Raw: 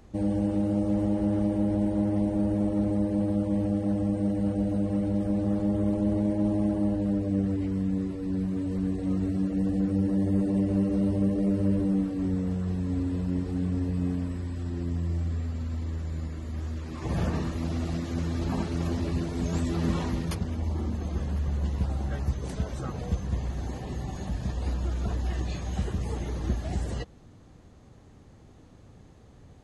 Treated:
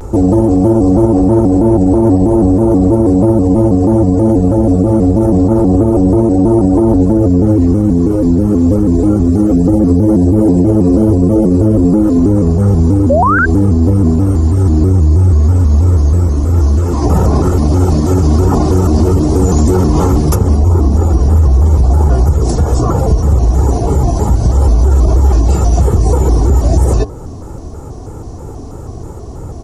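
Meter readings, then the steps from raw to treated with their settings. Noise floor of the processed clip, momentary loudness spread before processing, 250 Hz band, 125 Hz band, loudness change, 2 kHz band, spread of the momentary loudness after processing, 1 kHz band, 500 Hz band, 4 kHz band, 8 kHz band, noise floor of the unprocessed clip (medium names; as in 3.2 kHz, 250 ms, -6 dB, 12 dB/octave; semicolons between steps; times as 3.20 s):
-26 dBFS, 7 LU, +16.5 dB, +19.5 dB, +18.5 dB, +20.5 dB, 3 LU, +22.0 dB, +20.5 dB, no reading, +20.5 dB, -52 dBFS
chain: high-order bell 2.6 kHz -15 dB; comb 2.5 ms, depth 47%; de-hum 108.9 Hz, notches 17; in parallel at -2 dB: compression, threshold -41 dBFS, peak gain reduction 19.5 dB; on the sum: painted sound rise, 13.10–13.46 s, 580–1800 Hz -25 dBFS; loudness maximiser +21.5 dB; vibrato with a chosen wave square 3.1 Hz, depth 160 cents; trim -1 dB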